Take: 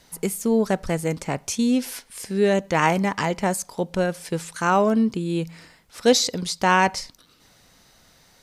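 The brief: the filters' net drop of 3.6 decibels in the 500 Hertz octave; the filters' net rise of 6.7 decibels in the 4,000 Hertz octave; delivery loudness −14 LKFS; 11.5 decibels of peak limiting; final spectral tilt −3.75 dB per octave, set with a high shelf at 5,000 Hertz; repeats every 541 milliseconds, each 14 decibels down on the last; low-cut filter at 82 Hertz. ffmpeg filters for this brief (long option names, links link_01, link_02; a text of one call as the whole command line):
ffmpeg -i in.wav -af "highpass=82,equalizer=frequency=500:width_type=o:gain=-4.5,equalizer=frequency=4000:width_type=o:gain=6.5,highshelf=frequency=5000:gain=3.5,alimiter=limit=-15dB:level=0:latency=1,aecho=1:1:541|1082:0.2|0.0399,volume=11.5dB" out.wav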